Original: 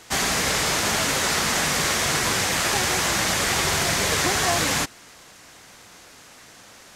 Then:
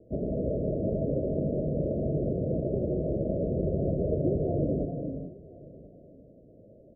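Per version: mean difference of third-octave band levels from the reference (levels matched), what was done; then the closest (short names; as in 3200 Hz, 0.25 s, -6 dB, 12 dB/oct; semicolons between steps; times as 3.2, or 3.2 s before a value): 26.5 dB: Chebyshev low-pass 640 Hz, order 8; echo 1.039 s -21.5 dB; non-linear reverb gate 0.46 s rising, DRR 5.5 dB; gain +1 dB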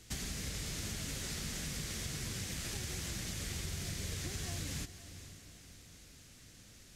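6.0 dB: passive tone stack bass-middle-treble 10-0-1; compressor 6:1, threshold -48 dBFS, peak gain reduction 11 dB; on a send: diffused feedback echo 0.474 s, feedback 45%, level -13 dB; on the sum: gain +10.5 dB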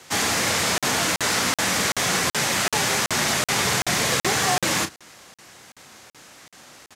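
2.0 dB: frequency shift +38 Hz; doubler 33 ms -10 dB; crackling interface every 0.38 s, samples 2048, zero, from 0.78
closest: third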